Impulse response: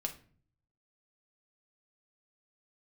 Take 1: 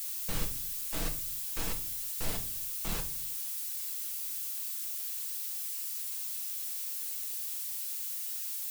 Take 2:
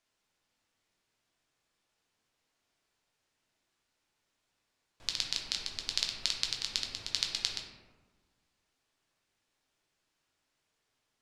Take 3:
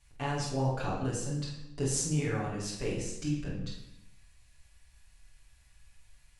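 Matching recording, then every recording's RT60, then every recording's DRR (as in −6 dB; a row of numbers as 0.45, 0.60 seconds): 1; 0.45, 1.4, 0.80 seconds; 3.0, 0.0, −7.0 decibels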